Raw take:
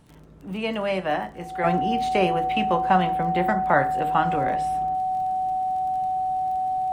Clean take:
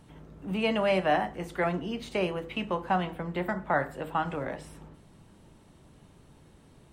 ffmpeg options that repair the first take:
ffmpeg -i in.wav -af "adeclick=threshold=4,bandreject=frequency=750:width=30,asetnsamples=nb_out_samples=441:pad=0,asendcmd='1.64 volume volume -6.5dB',volume=0dB" out.wav

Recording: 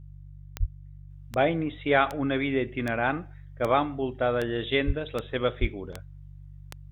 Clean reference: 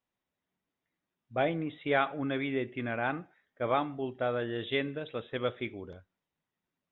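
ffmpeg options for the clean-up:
ffmpeg -i in.wav -filter_complex "[0:a]adeclick=threshold=4,bandreject=frequency=48.3:width_type=h:width=4,bandreject=frequency=96.6:width_type=h:width=4,bandreject=frequency=144.9:width_type=h:width=4,asplit=3[link_01][link_02][link_03];[link_01]afade=type=out:start_time=0.59:duration=0.02[link_04];[link_02]highpass=frequency=140:width=0.5412,highpass=frequency=140:width=1.3066,afade=type=in:start_time=0.59:duration=0.02,afade=type=out:start_time=0.71:duration=0.02[link_05];[link_03]afade=type=in:start_time=0.71:duration=0.02[link_06];[link_04][link_05][link_06]amix=inputs=3:normalize=0,asplit=3[link_07][link_08][link_09];[link_07]afade=type=out:start_time=4.86:duration=0.02[link_10];[link_08]highpass=frequency=140:width=0.5412,highpass=frequency=140:width=1.3066,afade=type=in:start_time=4.86:duration=0.02,afade=type=out:start_time=4.98:duration=0.02[link_11];[link_09]afade=type=in:start_time=4.98:duration=0.02[link_12];[link_10][link_11][link_12]amix=inputs=3:normalize=0,asplit=3[link_13][link_14][link_15];[link_13]afade=type=out:start_time=5.6:duration=0.02[link_16];[link_14]highpass=frequency=140:width=0.5412,highpass=frequency=140:width=1.3066,afade=type=in:start_time=5.6:duration=0.02,afade=type=out:start_time=5.72:duration=0.02[link_17];[link_15]afade=type=in:start_time=5.72:duration=0.02[link_18];[link_16][link_17][link_18]amix=inputs=3:normalize=0,asetnsamples=nb_out_samples=441:pad=0,asendcmd='1.1 volume volume -5.5dB',volume=0dB" out.wav

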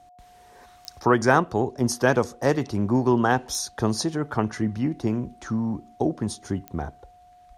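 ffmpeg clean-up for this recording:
ffmpeg -i in.wav -af "adeclick=threshold=4,bandreject=frequency=720:width=30" out.wav

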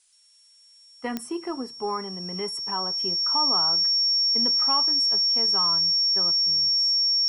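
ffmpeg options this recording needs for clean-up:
ffmpeg -i in.wav -af "adeclick=threshold=4,bandreject=frequency=5500:width=30,agate=range=-21dB:threshold=-46dB" out.wav

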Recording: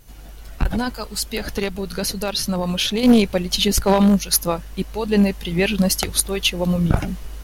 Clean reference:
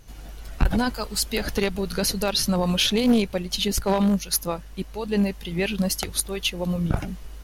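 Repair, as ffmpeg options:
ffmpeg -i in.wav -af "agate=range=-21dB:threshold=-27dB,asetnsamples=nb_out_samples=441:pad=0,asendcmd='3.03 volume volume -6dB',volume=0dB" out.wav

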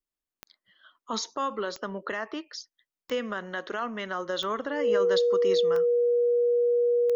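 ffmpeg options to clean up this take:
ffmpeg -i in.wav -af "adeclick=threshold=4,bandreject=frequency=480:width=30" out.wav

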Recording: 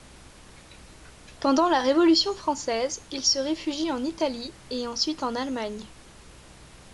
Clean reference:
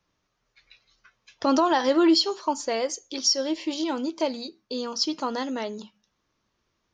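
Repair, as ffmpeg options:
ffmpeg -i in.wav -af "bandreject=frequency=63.6:width_type=h:width=4,bandreject=frequency=127.2:width_type=h:width=4,bandreject=frequency=190.8:width_type=h:width=4,bandreject=frequency=254.4:width_type=h:width=4,bandreject=frequency=318:width_type=h:width=4,afftdn=noise_reduction=26:noise_floor=-49" out.wav

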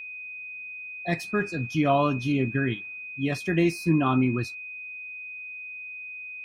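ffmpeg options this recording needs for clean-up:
ffmpeg -i in.wav -af "bandreject=frequency=2500:width=30" out.wav

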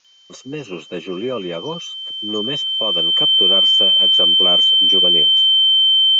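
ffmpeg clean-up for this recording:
ffmpeg -i in.wav -af "bandreject=frequency=3100:width=30,agate=range=-21dB:threshold=-28dB" out.wav

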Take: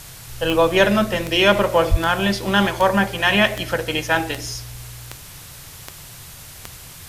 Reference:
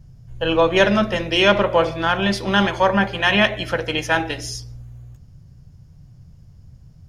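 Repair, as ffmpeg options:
ffmpeg -i in.wav -filter_complex "[0:a]adeclick=threshold=4,asplit=3[link_01][link_02][link_03];[link_01]afade=type=out:start_time=1.9:duration=0.02[link_04];[link_02]highpass=frequency=140:width=0.5412,highpass=frequency=140:width=1.3066,afade=type=in:start_time=1.9:duration=0.02,afade=type=out:start_time=2.02:duration=0.02[link_05];[link_03]afade=type=in:start_time=2.02:duration=0.02[link_06];[link_04][link_05][link_06]amix=inputs=3:normalize=0,afwtdn=0.011" out.wav

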